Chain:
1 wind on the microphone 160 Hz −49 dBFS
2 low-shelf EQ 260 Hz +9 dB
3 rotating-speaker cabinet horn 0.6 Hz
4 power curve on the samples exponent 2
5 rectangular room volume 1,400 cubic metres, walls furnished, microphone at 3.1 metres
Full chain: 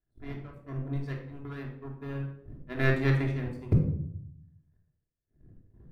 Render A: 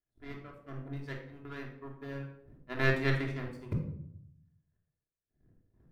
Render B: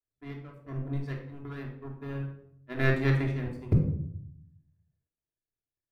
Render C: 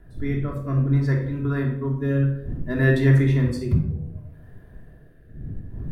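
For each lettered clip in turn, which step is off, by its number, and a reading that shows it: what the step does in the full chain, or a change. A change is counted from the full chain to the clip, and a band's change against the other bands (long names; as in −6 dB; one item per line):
2, 125 Hz band −7.0 dB
1, change in momentary loudness spread +1 LU
4, change in crest factor −6.0 dB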